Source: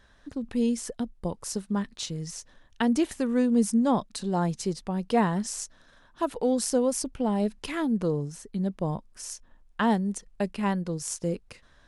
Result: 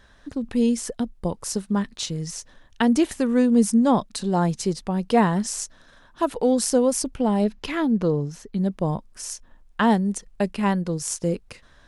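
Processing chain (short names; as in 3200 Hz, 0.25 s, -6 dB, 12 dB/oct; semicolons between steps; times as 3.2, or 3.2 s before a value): 7.44–8.57 bell 9100 Hz -11 dB 0.67 oct; gain +5 dB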